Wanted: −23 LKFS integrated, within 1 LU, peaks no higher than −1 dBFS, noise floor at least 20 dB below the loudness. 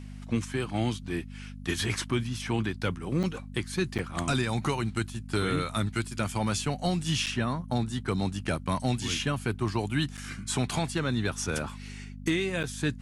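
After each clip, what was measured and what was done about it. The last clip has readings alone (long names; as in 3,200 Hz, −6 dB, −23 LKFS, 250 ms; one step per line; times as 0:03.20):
number of dropouts 5; longest dropout 7.7 ms; mains hum 50 Hz; hum harmonics up to 250 Hz; level of the hum −39 dBFS; integrated loudness −30.5 LKFS; sample peak −15.0 dBFS; target loudness −23.0 LKFS
→ repair the gap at 0:03.23/0:03.98/0:07.26/0:10.17/0:12.63, 7.7 ms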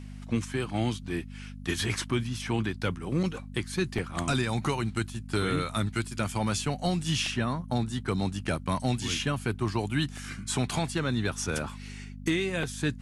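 number of dropouts 0; mains hum 50 Hz; hum harmonics up to 250 Hz; level of the hum −39 dBFS
→ hum removal 50 Hz, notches 5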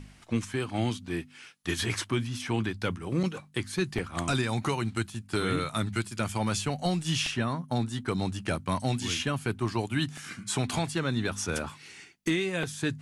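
mains hum none found; integrated loudness −30.5 LKFS; sample peak −15.5 dBFS; target loudness −23.0 LKFS
→ level +7.5 dB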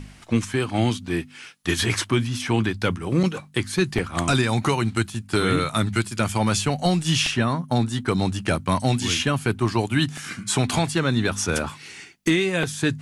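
integrated loudness −23.0 LKFS; sample peak −8.0 dBFS; background noise floor −46 dBFS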